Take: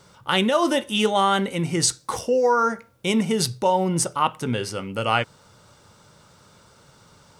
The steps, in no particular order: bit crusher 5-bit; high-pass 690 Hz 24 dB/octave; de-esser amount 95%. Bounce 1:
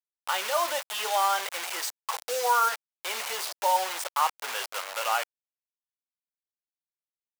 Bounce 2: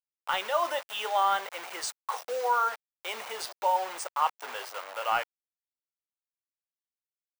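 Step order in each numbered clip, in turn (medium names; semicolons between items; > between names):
de-esser > bit crusher > high-pass; bit crusher > high-pass > de-esser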